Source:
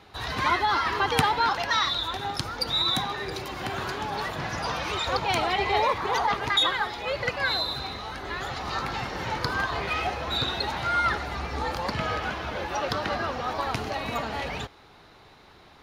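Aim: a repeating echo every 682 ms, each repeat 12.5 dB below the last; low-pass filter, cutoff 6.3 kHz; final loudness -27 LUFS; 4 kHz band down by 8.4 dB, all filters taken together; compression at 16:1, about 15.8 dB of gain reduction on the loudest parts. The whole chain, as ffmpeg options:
-af "lowpass=6300,equalizer=f=4000:t=o:g=-9,acompressor=threshold=0.02:ratio=16,aecho=1:1:682|1364|2046:0.237|0.0569|0.0137,volume=3.35"

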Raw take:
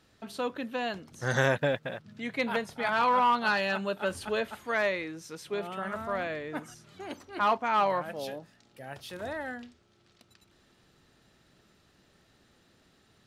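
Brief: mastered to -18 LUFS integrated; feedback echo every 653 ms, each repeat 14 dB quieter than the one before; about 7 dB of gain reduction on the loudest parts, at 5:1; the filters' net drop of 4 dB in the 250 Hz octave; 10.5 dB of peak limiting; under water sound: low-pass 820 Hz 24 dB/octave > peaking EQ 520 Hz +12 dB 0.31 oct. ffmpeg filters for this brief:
-af "equalizer=f=250:t=o:g=-5.5,acompressor=threshold=0.0355:ratio=5,alimiter=level_in=1.41:limit=0.0631:level=0:latency=1,volume=0.708,lowpass=f=820:w=0.5412,lowpass=f=820:w=1.3066,equalizer=f=520:t=o:w=0.31:g=12,aecho=1:1:653|1306:0.2|0.0399,volume=7.94"

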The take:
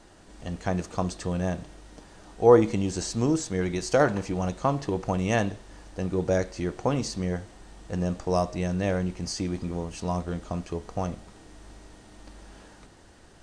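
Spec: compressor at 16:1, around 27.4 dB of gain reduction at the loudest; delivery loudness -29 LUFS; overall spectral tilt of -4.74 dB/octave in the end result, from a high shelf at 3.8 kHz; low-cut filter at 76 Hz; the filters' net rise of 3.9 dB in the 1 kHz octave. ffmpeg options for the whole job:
-af "highpass=76,equalizer=f=1000:t=o:g=5,highshelf=f=3800:g=3.5,acompressor=threshold=0.0141:ratio=16,volume=5.31"

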